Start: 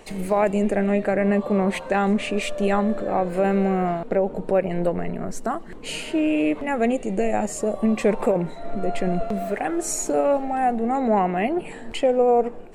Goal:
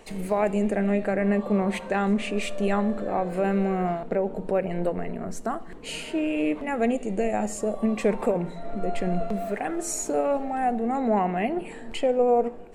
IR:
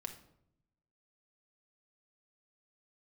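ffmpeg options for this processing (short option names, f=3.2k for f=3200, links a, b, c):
-filter_complex "[0:a]asplit=2[a][b];[1:a]atrim=start_sample=2205,asetrate=43218,aresample=44100[c];[b][c]afir=irnorm=-1:irlink=0,volume=-4dB[d];[a][d]amix=inputs=2:normalize=0,volume=-6.5dB"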